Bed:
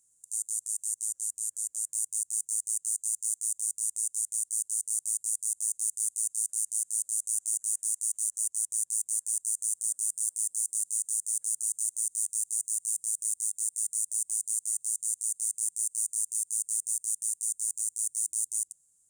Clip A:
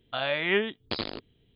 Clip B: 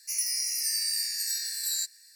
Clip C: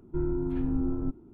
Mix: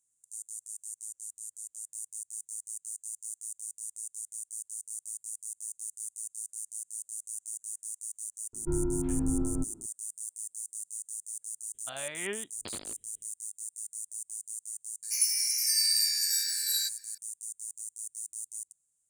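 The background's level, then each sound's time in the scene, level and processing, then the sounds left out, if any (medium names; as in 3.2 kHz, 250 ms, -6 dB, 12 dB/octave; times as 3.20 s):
bed -9.5 dB
8.53 s: add C -1 dB
11.74 s: add A -11.5 dB
15.03 s: add B -1 dB + comb 1.3 ms, depth 88%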